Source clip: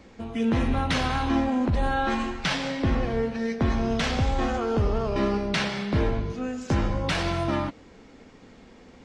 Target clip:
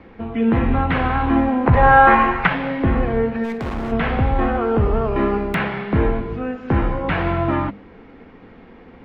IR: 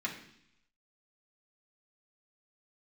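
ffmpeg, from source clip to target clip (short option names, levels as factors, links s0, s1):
-filter_complex "[0:a]acrossover=split=3200[s0][s1];[s1]acompressor=threshold=0.00316:ratio=4:attack=1:release=60[s2];[s0][s2]amix=inputs=2:normalize=0,aemphasis=mode=production:type=50kf,bandreject=f=590:w=12,acrossover=split=650|2600[s3][s4][s5];[s5]acrusher=bits=3:mix=0:aa=0.000001[s6];[s3][s4][s6]amix=inputs=3:normalize=0,asettb=1/sr,asplit=3[s7][s8][s9];[s7]atrim=end=1.664[s10];[s8]atrim=start=1.66:end=2.47,asetpts=PTS-STARTPTS,afade=t=in:d=0.004:c=qsin,afade=t=out:st=0.806:d=0.004:c=qsin,equalizer=f=125:t=o:w=1:g=9,equalizer=f=250:t=o:w=1:g=-5,equalizer=f=500:t=o:w=1:g=6,equalizer=f=1000:t=o:w=1:g=9,equalizer=f=2000:t=o:w=1:g=8,equalizer=f=8000:t=o:w=1:g=10[s11];[s9]atrim=start=2.466[s12];[s10][s11]acrossfade=d=0.004:c1=hsin:c2=qsin[s13];[s13][s12]acrossfade=d=0.004:c1=qsin:c2=hsin,asplit=3[s14][s15][s16];[s14]afade=t=out:st=3.43:d=0.02[s17];[s15]volume=29.9,asoftclip=hard,volume=0.0335,afade=t=in:st=3.43:d=0.02,afade=t=out:st=3.91:d=0.02[s18];[s16]afade=t=in:st=3.91:d=0.02[s19];[s17][s18][s19]amix=inputs=3:normalize=0,bandreject=f=50:t=h:w=6,bandreject=f=100:t=h:w=6,bandreject=f=150:t=h:w=6,bandreject=f=200:t=h:w=6,bandreject=f=250:t=h:w=6,volume=2.24"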